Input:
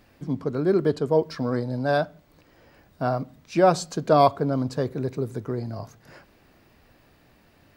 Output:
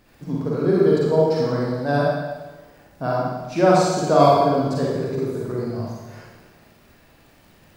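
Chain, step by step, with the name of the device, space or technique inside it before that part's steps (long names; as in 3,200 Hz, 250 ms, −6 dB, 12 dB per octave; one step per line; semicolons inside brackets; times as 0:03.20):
0:01.92–0:03.04: parametric band 3,300 Hz −5 dB 2 octaves
vinyl LP (surface crackle 37 per second −44 dBFS; pink noise bed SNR 43 dB)
four-comb reverb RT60 1.2 s, DRR −5 dB
level −1.5 dB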